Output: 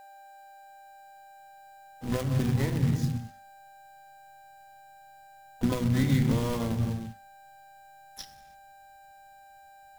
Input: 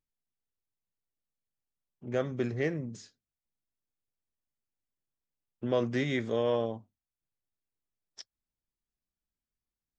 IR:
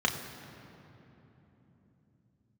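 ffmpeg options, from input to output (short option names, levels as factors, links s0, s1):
-filter_complex "[0:a]asplit=2[s0][s1];[1:a]atrim=start_sample=2205,afade=t=out:st=0.39:d=0.01,atrim=end_sample=17640[s2];[s1][s2]afir=irnorm=-1:irlink=0,volume=0.316[s3];[s0][s3]amix=inputs=2:normalize=0,aeval=exprs='val(0)+0.00251*sin(2*PI*790*n/s)':c=same,bandreject=f=50:t=h:w=6,bandreject=f=100:t=h:w=6,bandreject=f=150:t=h:w=6,bandreject=f=200:t=h:w=6,bandreject=f=250:t=h:w=6,bandreject=f=300:t=h:w=6,bandreject=f=350:t=h:w=6,bandreject=f=400:t=h:w=6,bandreject=f=450:t=h:w=6,acrusher=bits=2:mode=log:mix=0:aa=0.000001,acompressor=threshold=0.0251:ratio=6,asplit=3[s4][s5][s6];[s5]asetrate=33038,aresample=44100,atempo=1.33484,volume=0.224[s7];[s6]asetrate=88200,aresample=44100,atempo=0.5,volume=0.251[s8];[s4][s7][s8]amix=inputs=3:normalize=0,asubboost=boost=10.5:cutoff=150,volume=1.58"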